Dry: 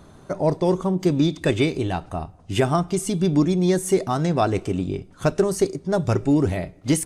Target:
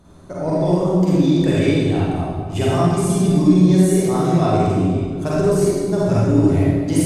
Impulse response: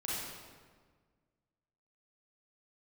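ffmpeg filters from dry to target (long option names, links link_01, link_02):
-filter_complex "[0:a]equalizer=frequency=1700:width_type=o:width=2.9:gain=-4[link_01];[1:a]atrim=start_sample=2205,asetrate=37044,aresample=44100[link_02];[link_01][link_02]afir=irnorm=-1:irlink=0"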